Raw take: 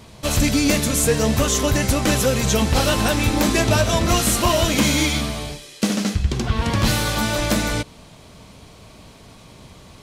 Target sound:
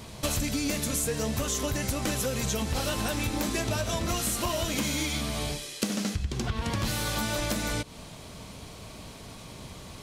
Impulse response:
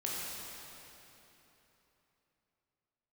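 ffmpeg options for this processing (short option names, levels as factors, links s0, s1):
-af "highshelf=f=6400:g=4.5,acompressor=threshold=0.0501:ratio=10"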